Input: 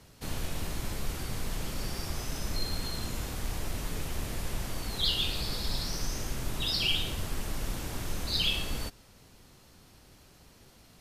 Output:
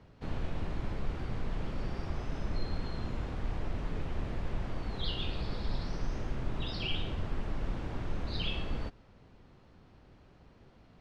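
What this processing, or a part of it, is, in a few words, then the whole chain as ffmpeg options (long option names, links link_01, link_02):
phone in a pocket: -af "lowpass=3700,highshelf=frequency=2300:gain=-11.5"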